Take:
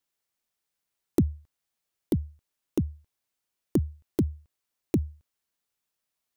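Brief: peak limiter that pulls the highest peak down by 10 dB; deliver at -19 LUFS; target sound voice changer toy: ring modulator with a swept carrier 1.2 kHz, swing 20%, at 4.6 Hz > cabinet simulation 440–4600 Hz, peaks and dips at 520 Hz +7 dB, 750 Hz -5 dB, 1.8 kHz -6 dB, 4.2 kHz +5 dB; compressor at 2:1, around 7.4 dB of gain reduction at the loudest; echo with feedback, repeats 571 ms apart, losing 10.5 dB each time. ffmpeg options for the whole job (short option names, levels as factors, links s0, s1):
-af "acompressor=threshold=0.0282:ratio=2,alimiter=limit=0.0708:level=0:latency=1,aecho=1:1:571|1142|1713:0.299|0.0896|0.0269,aeval=exprs='val(0)*sin(2*PI*1200*n/s+1200*0.2/4.6*sin(2*PI*4.6*n/s))':c=same,highpass=440,equalizer=f=520:t=q:w=4:g=7,equalizer=f=750:t=q:w=4:g=-5,equalizer=f=1800:t=q:w=4:g=-6,equalizer=f=4200:t=q:w=4:g=5,lowpass=f=4600:w=0.5412,lowpass=f=4600:w=1.3066,volume=18.8"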